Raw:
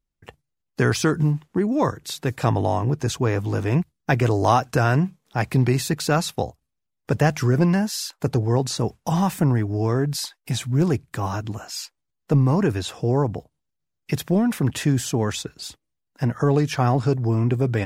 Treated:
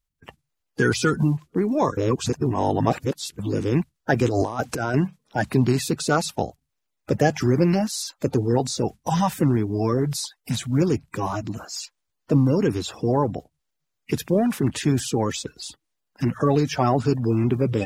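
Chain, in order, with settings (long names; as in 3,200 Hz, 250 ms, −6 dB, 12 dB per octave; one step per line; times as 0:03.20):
spectral magnitudes quantised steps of 30 dB
0:01.97–0:03.39: reverse
0:04.28–0:04.94: compressor whose output falls as the input rises −23 dBFS, ratio −0.5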